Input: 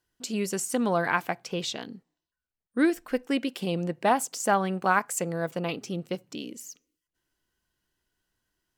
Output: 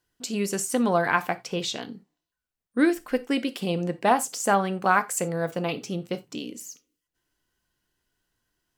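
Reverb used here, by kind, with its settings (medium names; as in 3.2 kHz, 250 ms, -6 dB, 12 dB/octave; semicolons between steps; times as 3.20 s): gated-style reverb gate 110 ms falling, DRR 11 dB; trim +2 dB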